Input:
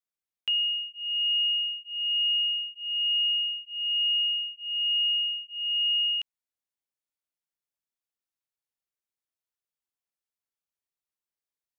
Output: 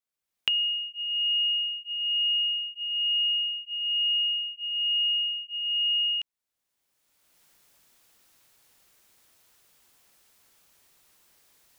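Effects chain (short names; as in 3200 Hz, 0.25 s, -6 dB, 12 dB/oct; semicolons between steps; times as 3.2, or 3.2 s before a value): recorder AGC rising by 25 dB/s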